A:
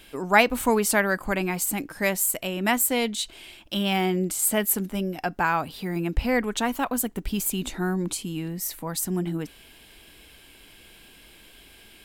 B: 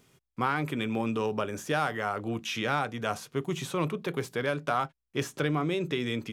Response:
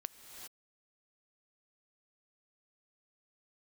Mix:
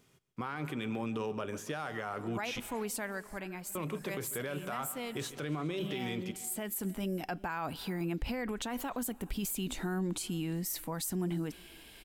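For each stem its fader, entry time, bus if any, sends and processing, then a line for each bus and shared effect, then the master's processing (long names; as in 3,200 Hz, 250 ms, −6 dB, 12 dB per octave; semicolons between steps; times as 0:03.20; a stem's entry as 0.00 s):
−3.5 dB, 2.05 s, send −19.5 dB, no echo send, automatic ducking −15 dB, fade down 0.90 s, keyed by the second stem
−4.0 dB, 0.00 s, muted 0:02.60–0:03.75, no send, echo send −18.5 dB, no processing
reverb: on, pre-delay 3 ms
echo: repeating echo 142 ms, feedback 53%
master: brickwall limiter −27 dBFS, peak gain reduction 13 dB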